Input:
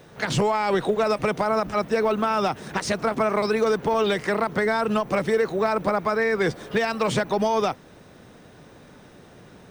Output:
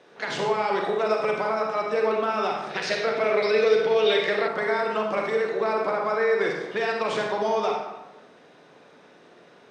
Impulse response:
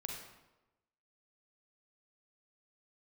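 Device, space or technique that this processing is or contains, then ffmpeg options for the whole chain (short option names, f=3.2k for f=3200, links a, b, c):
supermarket ceiling speaker: -filter_complex "[0:a]highpass=330,lowpass=5.3k[a];[1:a]atrim=start_sample=2205[b];[a][b]afir=irnorm=-1:irlink=0,asettb=1/sr,asplit=3[c][d][e];[c]atrim=end=2.704[f];[d]atrim=start=2.7:end=4.48,asetpts=PTS-STARTPTS,afade=t=in:d=0.004:c=qsin,afade=t=out:st=1.776:d=0.004:c=qsin,equalizer=f=125:t=o:w=1:g=7,equalizer=f=250:t=o:w=1:g=-5,equalizer=f=500:t=o:w=1:g=7,equalizer=f=1k:t=o:w=1:g=-8,equalizer=f=2k:t=o:w=1:g=5,equalizer=f=4k:t=o:w=1:g=8,equalizer=f=8k:t=o:w=1:g=-3[g];[e]atrim=start=4.476[h];[f][g]acrossfade=d=0.004:c1=hsin:c2=qsin[i];[i][h]acrossfade=d=0.004:c1=qsin:c2=hsin"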